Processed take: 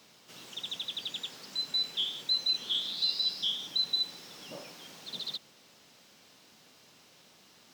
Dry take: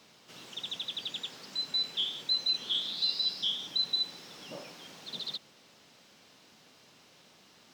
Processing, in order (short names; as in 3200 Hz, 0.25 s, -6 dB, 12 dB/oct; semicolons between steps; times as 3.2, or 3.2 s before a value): high shelf 8000 Hz +7.5 dB; gain -1 dB